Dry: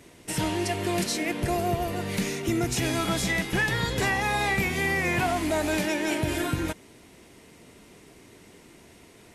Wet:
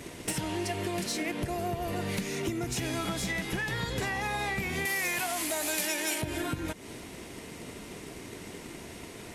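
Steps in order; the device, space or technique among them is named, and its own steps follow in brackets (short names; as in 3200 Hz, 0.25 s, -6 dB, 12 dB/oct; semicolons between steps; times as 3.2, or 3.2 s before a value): drum-bus smash (transient shaper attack +6 dB, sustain +2 dB; compressor 16:1, threshold -35 dBFS, peak gain reduction 18.5 dB; soft clip -30.5 dBFS, distortion -20 dB); 4.85–6.22 RIAA curve recording; gain +7.5 dB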